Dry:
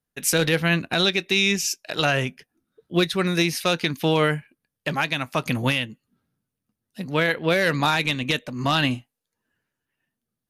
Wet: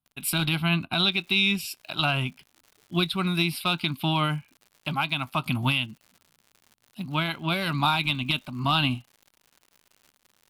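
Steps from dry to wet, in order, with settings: fixed phaser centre 1800 Hz, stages 6; crackle 33/s -42 dBFS, from 1.12 s 150/s

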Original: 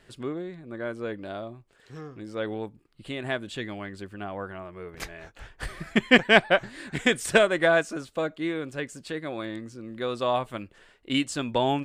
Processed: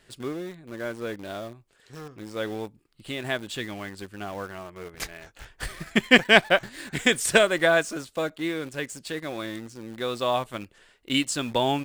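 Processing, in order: high shelf 3200 Hz +7.5 dB; in parallel at -8 dB: bit-crush 6-bit; on the sum: gain -3 dB

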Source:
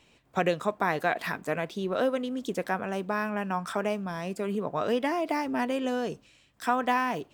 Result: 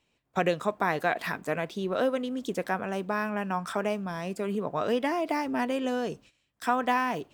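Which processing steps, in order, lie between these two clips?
gate -52 dBFS, range -12 dB

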